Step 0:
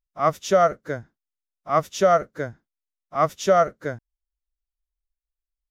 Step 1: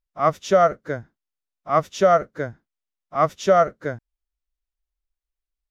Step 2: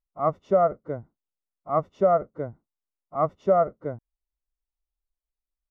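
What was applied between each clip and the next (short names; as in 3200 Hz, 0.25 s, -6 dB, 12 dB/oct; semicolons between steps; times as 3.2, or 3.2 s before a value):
high shelf 7400 Hz -10.5 dB; gain +1.5 dB
polynomial smoothing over 65 samples; gain -3.5 dB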